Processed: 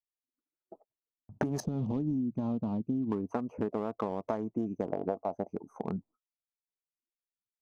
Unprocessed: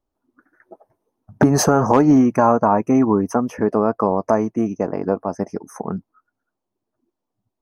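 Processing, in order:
adaptive Wiener filter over 25 samples
0:01.60–0:03.12: drawn EQ curve 230 Hz 0 dB, 410 Hz −12 dB, 1,600 Hz −27 dB, 3,600 Hz −11 dB, 12,000 Hz −27 dB
noise gate −47 dBFS, range −29 dB
0:04.92–0:05.47: parametric band 700 Hz +12 dB 0.87 octaves
downward compressor 10 to 1, threshold −21 dBFS, peak gain reduction 13.5 dB
level −7 dB

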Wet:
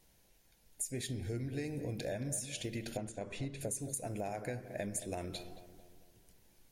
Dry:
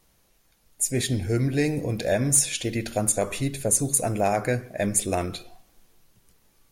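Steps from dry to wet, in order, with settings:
parametric band 1,200 Hz −11.5 dB 0.26 octaves
downward compressor 10 to 1, threshold −32 dBFS, peak gain reduction 17 dB
0:02.97–0:03.61: high-frequency loss of the air 94 metres
feedback echo with a low-pass in the loop 223 ms, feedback 51%, low-pass 1,600 Hz, level −11.5 dB
level −4 dB

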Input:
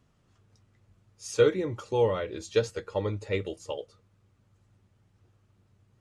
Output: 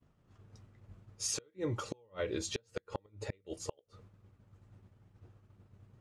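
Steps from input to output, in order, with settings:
downward expander −59 dBFS
downward compressor 2.5 to 1, threshold −43 dBFS, peak gain reduction 18 dB
gate with flip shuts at −32 dBFS, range −34 dB
one half of a high-frequency compander decoder only
level +8.5 dB

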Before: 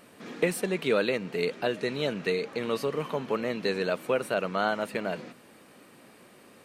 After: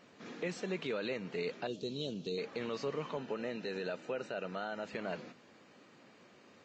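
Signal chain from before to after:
0:01.67–0:02.38: drawn EQ curve 370 Hz 0 dB, 2,000 Hz −26 dB, 3,300 Hz +2 dB
brickwall limiter −21 dBFS, peak gain reduction 8 dB
0:03.17–0:04.86: notch comb filter 1,100 Hz
level −6.5 dB
Ogg Vorbis 32 kbit/s 16,000 Hz

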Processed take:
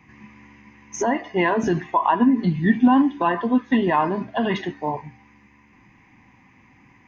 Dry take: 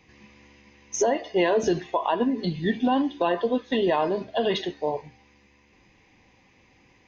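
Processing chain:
graphic EQ with 10 bands 125 Hz +7 dB, 250 Hz +9 dB, 500 Hz −9 dB, 1,000 Hz +9 dB, 2,000 Hz +7 dB, 4,000 Hz −10 dB

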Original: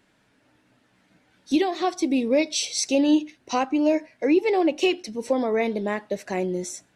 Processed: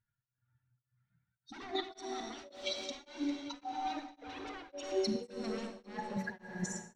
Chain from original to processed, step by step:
spectral dynamics exaggerated over time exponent 2
parametric band 64 Hz −7.5 dB 1.6 octaves
hum removal 95.34 Hz, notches 9
wave folding −31 dBFS
compressor whose output falls as the input rises −45 dBFS, ratio −0.5
high-frequency loss of the air 130 metres
feedback echo with a high-pass in the loop 399 ms, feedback 65%, level −14 dB
on a send at −3 dB: convolution reverb RT60 3.7 s, pre-delay 34 ms
on the sum: tremolo along a rectified sine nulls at 1.8 Hz
level +8.5 dB

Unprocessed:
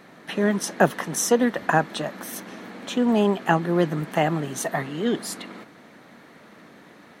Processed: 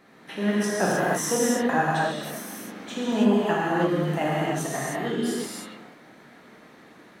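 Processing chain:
reverb whose tail is shaped and stops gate 340 ms flat, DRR −6.5 dB
level −8.5 dB

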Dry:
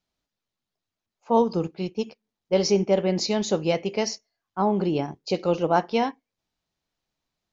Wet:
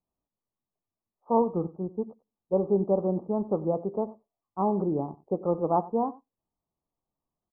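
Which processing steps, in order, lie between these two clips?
Chebyshev low-pass filter 1,200 Hz, order 6
on a send: single-tap delay 93 ms −19.5 dB
on the sum: level −3 dB

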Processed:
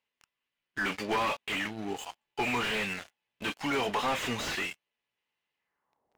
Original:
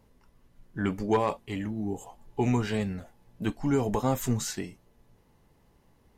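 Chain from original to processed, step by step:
band-pass filter sweep 2,700 Hz → 670 Hz, 0:05.56–0:06.07
leveller curve on the samples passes 5
slew-rate limiting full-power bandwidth 38 Hz
level +5 dB

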